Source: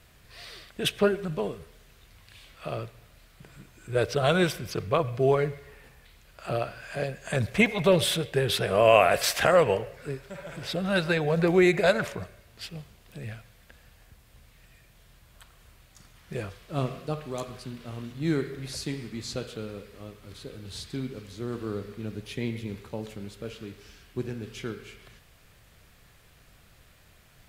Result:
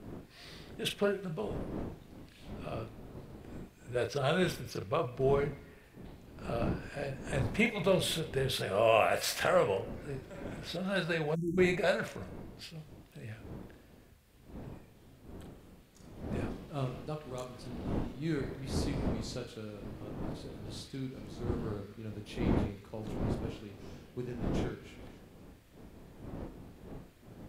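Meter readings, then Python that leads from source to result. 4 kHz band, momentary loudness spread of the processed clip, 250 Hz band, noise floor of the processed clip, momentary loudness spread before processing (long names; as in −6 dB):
−7.0 dB, 21 LU, −5.5 dB, −58 dBFS, 21 LU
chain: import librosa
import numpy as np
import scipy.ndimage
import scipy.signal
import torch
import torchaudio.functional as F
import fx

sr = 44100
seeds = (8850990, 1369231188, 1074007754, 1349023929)

y = fx.dmg_wind(x, sr, seeds[0], corner_hz=310.0, level_db=-35.0)
y = fx.doubler(y, sr, ms=38.0, db=-7.0)
y = fx.spec_erase(y, sr, start_s=11.35, length_s=0.23, low_hz=360.0, high_hz=5500.0)
y = y * 10.0 ** (-8.0 / 20.0)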